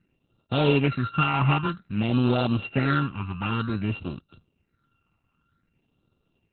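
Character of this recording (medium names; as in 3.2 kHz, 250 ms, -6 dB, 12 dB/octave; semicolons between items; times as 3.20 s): a buzz of ramps at a fixed pitch in blocks of 32 samples; phasing stages 8, 0.53 Hz, lowest notch 500–1900 Hz; Opus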